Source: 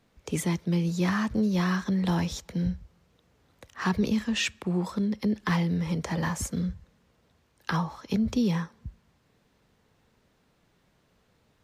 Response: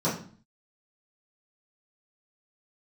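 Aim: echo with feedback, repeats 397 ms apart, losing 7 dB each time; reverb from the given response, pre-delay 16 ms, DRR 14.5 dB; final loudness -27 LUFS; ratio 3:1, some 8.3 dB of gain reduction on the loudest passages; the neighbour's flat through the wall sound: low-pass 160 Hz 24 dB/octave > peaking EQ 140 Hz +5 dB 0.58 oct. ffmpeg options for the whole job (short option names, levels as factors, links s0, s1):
-filter_complex "[0:a]acompressor=threshold=0.0224:ratio=3,aecho=1:1:397|794|1191|1588|1985:0.447|0.201|0.0905|0.0407|0.0183,asplit=2[s0][s1];[1:a]atrim=start_sample=2205,adelay=16[s2];[s1][s2]afir=irnorm=-1:irlink=0,volume=0.0501[s3];[s0][s3]amix=inputs=2:normalize=0,lowpass=f=160:w=0.5412,lowpass=f=160:w=1.3066,equalizer=f=140:t=o:w=0.58:g=5,volume=4.47"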